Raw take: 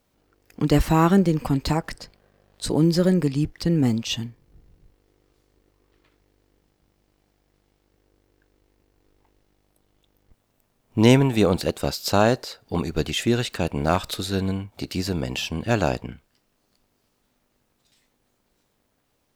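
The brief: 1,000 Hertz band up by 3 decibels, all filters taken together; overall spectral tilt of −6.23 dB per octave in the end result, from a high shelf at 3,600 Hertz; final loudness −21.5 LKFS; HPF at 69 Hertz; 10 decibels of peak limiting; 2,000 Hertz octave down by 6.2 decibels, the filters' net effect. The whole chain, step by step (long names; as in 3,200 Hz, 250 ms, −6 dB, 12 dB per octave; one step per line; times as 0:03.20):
high-pass filter 69 Hz
parametric band 1,000 Hz +6.5 dB
parametric band 2,000 Hz −9 dB
high-shelf EQ 3,600 Hz −8 dB
level +4 dB
brickwall limiter −8 dBFS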